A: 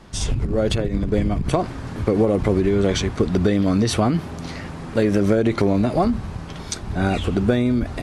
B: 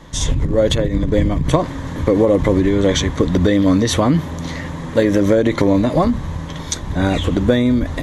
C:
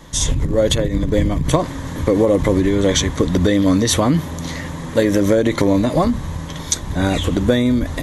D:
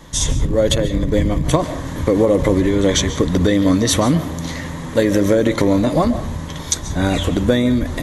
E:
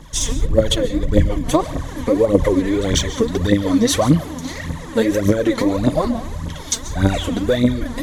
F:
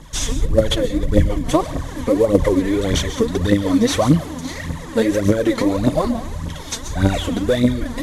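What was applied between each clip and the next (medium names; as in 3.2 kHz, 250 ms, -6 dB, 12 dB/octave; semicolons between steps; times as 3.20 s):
rippled EQ curve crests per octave 1.1, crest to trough 8 dB; trim +4 dB
treble shelf 6.9 kHz +12 dB; trim -1 dB
reverberation RT60 0.55 s, pre-delay 100 ms, DRR 12.5 dB
phaser 1.7 Hz, delay 4.6 ms, feedback 69%; trim -4.5 dB
CVSD coder 64 kbps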